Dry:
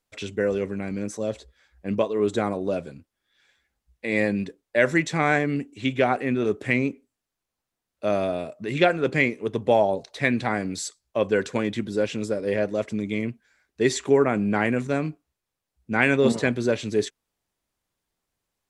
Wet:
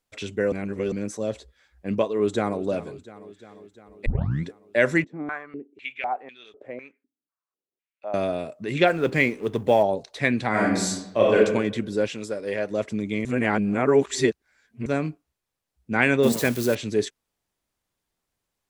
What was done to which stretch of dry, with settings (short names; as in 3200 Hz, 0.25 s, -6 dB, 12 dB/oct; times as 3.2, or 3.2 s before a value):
0.52–0.92 reverse
2.1–2.61 echo throw 0.35 s, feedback 70%, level -16.5 dB
4.06 tape start 0.42 s
5.04–8.14 stepped band-pass 4 Hz 280–3400 Hz
8.87–9.83 G.711 law mismatch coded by mu
10.49–11.35 reverb throw, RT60 0.95 s, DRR -5 dB
12.08–12.7 low shelf 400 Hz -8.5 dB
13.25–14.86 reverse
16.23–16.75 switching spikes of -23 dBFS